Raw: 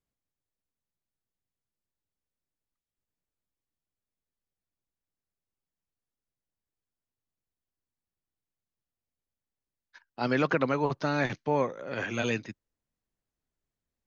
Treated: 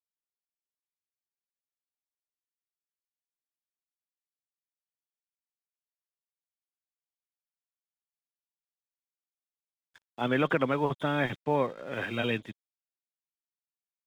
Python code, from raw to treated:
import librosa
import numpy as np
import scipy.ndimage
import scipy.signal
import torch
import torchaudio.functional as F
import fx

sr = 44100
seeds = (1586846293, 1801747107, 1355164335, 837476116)

y = fx.freq_compress(x, sr, knee_hz=3100.0, ratio=4.0)
y = np.sign(y) * np.maximum(np.abs(y) - 10.0 ** (-53.0 / 20.0), 0.0)